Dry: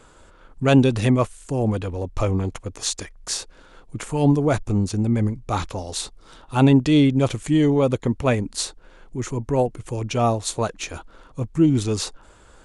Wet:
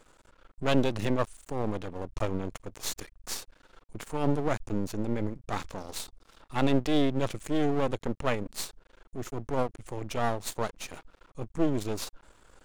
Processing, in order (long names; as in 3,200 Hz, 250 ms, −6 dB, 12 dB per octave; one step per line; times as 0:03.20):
parametric band 82 Hz −14.5 dB 0.29 octaves
half-wave rectification
level −5 dB